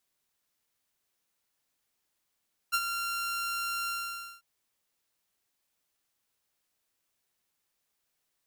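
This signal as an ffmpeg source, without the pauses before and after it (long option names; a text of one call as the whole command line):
ffmpeg -f lavfi -i "aevalsrc='0.0944*(2*mod(1380*t,1)-1)':duration=1.695:sample_rate=44100,afade=type=in:duration=0.024,afade=type=out:start_time=0.024:duration=0.05:silence=0.398,afade=type=out:start_time=1.16:duration=0.535" out.wav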